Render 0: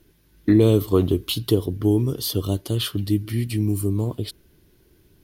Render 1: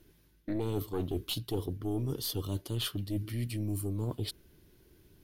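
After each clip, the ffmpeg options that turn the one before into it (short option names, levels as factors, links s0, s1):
-af "aeval=exprs='(tanh(2.82*val(0)+0.7)-tanh(0.7))/2.82':c=same,areverse,acompressor=threshold=0.0282:ratio=6,areverse"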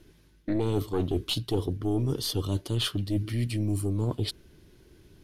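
-af "lowpass=9100,volume=2"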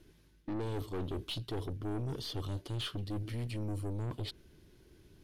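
-filter_complex "[0:a]acrossover=split=4600[s0][s1];[s1]acompressor=threshold=0.00398:ratio=4:attack=1:release=60[s2];[s0][s2]amix=inputs=2:normalize=0,aeval=exprs='(tanh(28.2*val(0)+0.2)-tanh(0.2))/28.2':c=same,volume=0.596"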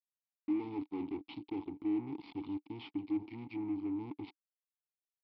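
-filter_complex "[0:a]aresample=11025,acrusher=bits=5:mix=0:aa=0.5,aresample=44100,asplit=3[s0][s1][s2];[s0]bandpass=f=300:t=q:w=8,volume=1[s3];[s1]bandpass=f=870:t=q:w=8,volume=0.501[s4];[s2]bandpass=f=2240:t=q:w=8,volume=0.355[s5];[s3][s4][s5]amix=inputs=3:normalize=0,volume=2.37"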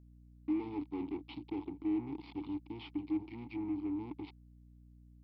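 -af "aeval=exprs='val(0)+0.00141*(sin(2*PI*60*n/s)+sin(2*PI*2*60*n/s)/2+sin(2*PI*3*60*n/s)/3+sin(2*PI*4*60*n/s)/4+sin(2*PI*5*60*n/s)/5)':c=same"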